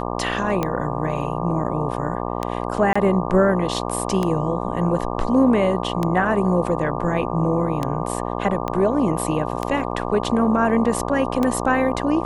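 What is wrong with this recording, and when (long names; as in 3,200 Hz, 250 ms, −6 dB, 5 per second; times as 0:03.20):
mains buzz 60 Hz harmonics 20 −26 dBFS
scratch tick 33 1/3 rpm −9 dBFS
0:02.93–0:02.96: drop-out 25 ms
0:08.68: click −12 dBFS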